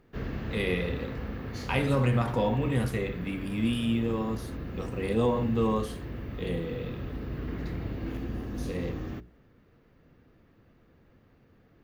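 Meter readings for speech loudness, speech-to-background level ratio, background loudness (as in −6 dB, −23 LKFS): −30.0 LKFS, 7.5 dB, −37.5 LKFS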